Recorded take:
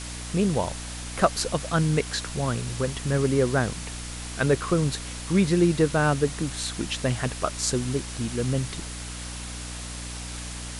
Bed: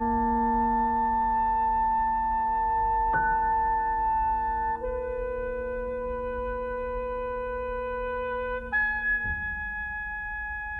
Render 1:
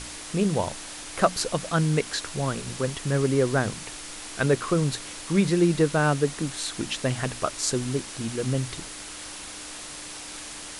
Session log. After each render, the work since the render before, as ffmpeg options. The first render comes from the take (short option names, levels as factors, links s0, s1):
-af "bandreject=f=60:t=h:w=6,bandreject=f=120:t=h:w=6,bandreject=f=180:t=h:w=6,bandreject=f=240:t=h:w=6"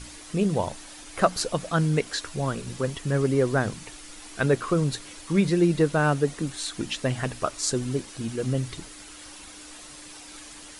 -af "afftdn=nr=8:nf=-39"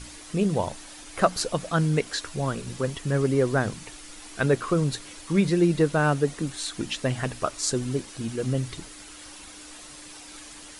-af anull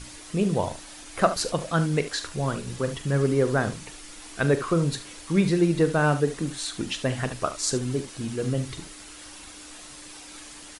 -af "aecho=1:1:42|73:0.224|0.211"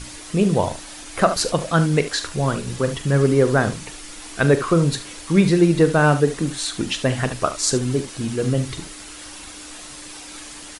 -af "volume=2,alimiter=limit=0.708:level=0:latency=1"